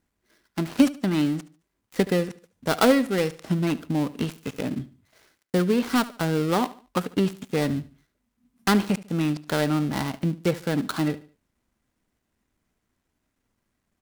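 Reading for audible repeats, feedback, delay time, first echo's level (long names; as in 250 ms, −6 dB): 2, 34%, 73 ms, −18.0 dB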